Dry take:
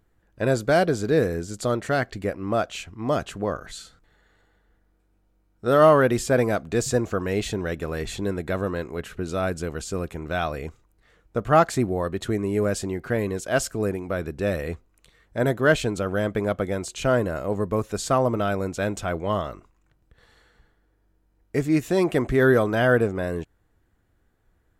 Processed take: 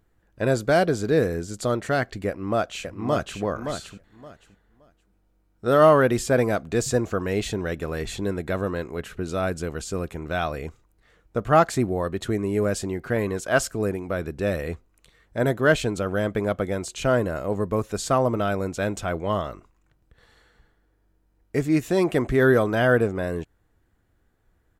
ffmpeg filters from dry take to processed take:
-filter_complex "[0:a]asplit=2[s0][s1];[s1]afade=t=in:st=2.27:d=0.01,afade=t=out:st=3.4:d=0.01,aecho=0:1:570|1140|1710:0.473151|0.0946303|0.0189261[s2];[s0][s2]amix=inputs=2:normalize=0,asettb=1/sr,asplit=3[s3][s4][s5];[s3]atrim=end=13.164[s6];[s4]atrim=start=13.16:end=13.66,asetpts=PTS-STARTPTS,afade=t=in:d=0.004:c=qsin,afade=t=out:st=0.496:d=0.004:c=qsin,equalizer=f=1200:t=o:w=1.3:g=5[s7];[s5]atrim=start=13.656[s8];[s6][s7]acrossfade=d=0.004:c1=hsin:c2=qsin[s9];[s9][s8]acrossfade=d=0.004:c1=qsin:c2=hsin"

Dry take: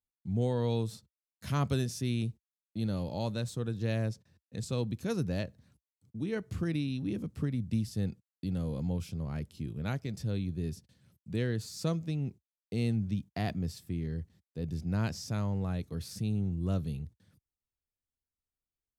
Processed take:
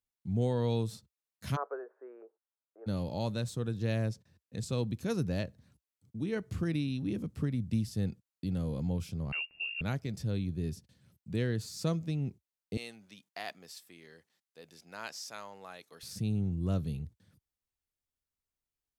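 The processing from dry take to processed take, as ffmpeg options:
-filter_complex "[0:a]asplit=3[s0][s1][s2];[s0]afade=t=out:st=1.55:d=0.02[s3];[s1]asuperpass=centerf=790:order=12:qfactor=0.68,afade=t=in:st=1.55:d=0.02,afade=t=out:st=2.86:d=0.02[s4];[s2]afade=t=in:st=2.86:d=0.02[s5];[s3][s4][s5]amix=inputs=3:normalize=0,asettb=1/sr,asplit=3[s6][s7][s8];[s6]atrim=end=9.324[s9];[s7]atrim=start=9.32:end=9.81,asetpts=PTS-STARTPTS,afade=t=in:d=0.004:c=qsin,afade=t=out:st=0.486:d=0.004:c=qsin,lowpass=f=2500:t=q:w=0.5098,lowpass=f=2500:t=q:w=0.6013,lowpass=f=2500:t=q:w=0.9,lowpass=f=2500:t=q:w=2.563,afreqshift=-2900[s10];[s8]atrim=start=9.806[s11];[s9][s10]acrossfade=d=0.004:c1=hsin:c2=qsin[s12];[s12][s11]acrossfade=d=0.004:c1=qsin:c2=hsin,asettb=1/sr,asplit=3[s13][s14][s15];[s13]atrim=end=12.774[s16];[s14]atrim=start=12.77:end=16.03,asetpts=PTS-STARTPTS,afade=t=in:d=0.004:c=qsin,afade=t=out:st=3.256:d=0.004:c=qsin,highpass=780[s17];[s15]atrim=start=16.026[s18];[s16][s17]acrossfade=d=0.004:c1=hsin:c2=qsin[s19];[s19][s18]acrossfade=d=0.004:c1=qsin:c2=hsin"

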